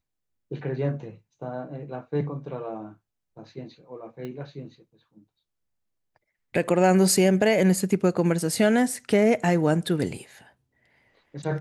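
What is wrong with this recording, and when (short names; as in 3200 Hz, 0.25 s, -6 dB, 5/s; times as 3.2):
4.25 pop -24 dBFS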